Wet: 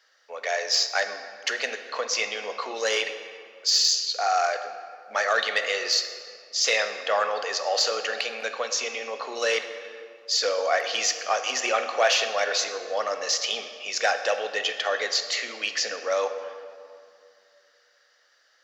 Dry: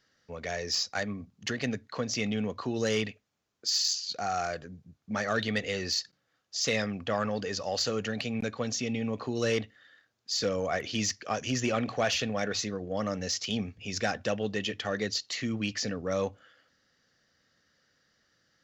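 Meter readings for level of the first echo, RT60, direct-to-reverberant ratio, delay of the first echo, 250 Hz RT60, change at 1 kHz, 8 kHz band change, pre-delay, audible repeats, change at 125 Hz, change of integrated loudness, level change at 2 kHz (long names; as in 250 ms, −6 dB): no echo audible, 2.3 s, 7.5 dB, no echo audible, 2.7 s, +8.5 dB, +6.5 dB, 15 ms, no echo audible, below −30 dB, +6.0 dB, +8.5 dB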